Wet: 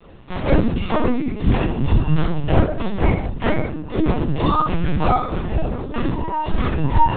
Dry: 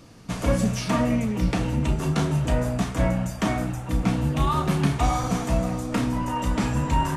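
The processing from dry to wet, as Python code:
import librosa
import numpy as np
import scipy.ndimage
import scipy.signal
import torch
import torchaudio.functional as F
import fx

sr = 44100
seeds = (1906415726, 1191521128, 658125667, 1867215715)

y = fx.highpass(x, sr, hz=68.0, slope=6)
y = fx.dereverb_blind(y, sr, rt60_s=1.9)
y = fx.low_shelf(y, sr, hz=90.0, db=-6.0, at=(3.49, 5.69))
y = fx.quant_float(y, sr, bits=2)
y = fx.chorus_voices(y, sr, voices=4, hz=0.35, base_ms=21, depth_ms=1.6, mix_pct=45)
y = fx.echo_feedback(y, sr, ms=69, feedback_pct=16, wet_db=-11)
y = fx.room_shoebox(y, sr, seeds[0], volume_m3=380.0, walls='furnished', distance_m=7.4)
y = fx.lpc_vocoder(y, sr, seeds[1], excitation='pitch_kept', order=10)
y = y * librosa.db_to_amplitude(-2.0)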